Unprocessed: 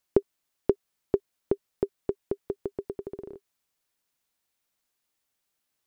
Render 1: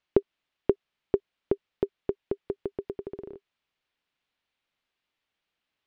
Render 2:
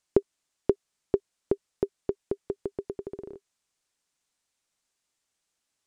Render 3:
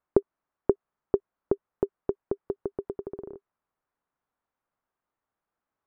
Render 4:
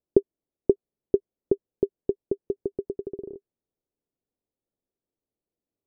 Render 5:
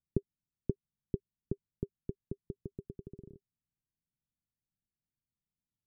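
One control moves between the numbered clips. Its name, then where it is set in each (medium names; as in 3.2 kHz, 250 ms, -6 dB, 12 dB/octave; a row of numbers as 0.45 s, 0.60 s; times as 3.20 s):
resonant low-pass, frequency: 3.1 kHz, 8 kHz, 1.2 kHz, 430 Hz, 160 Hz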